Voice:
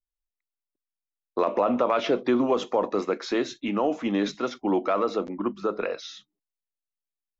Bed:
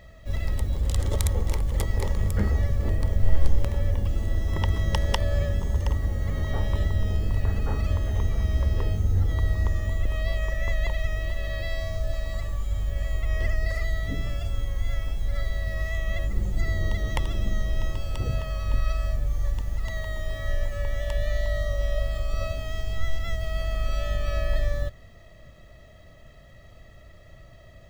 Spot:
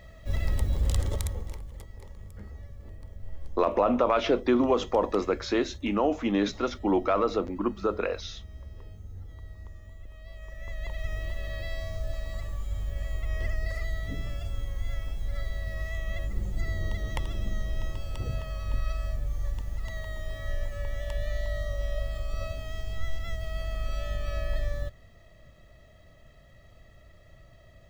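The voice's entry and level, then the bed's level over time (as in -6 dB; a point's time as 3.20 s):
2.20 s, -0.5 dB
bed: 0.92 s -0.5 dB
1.88 s -20 dB
10.20 s -20 dB
11.12 s -5 dB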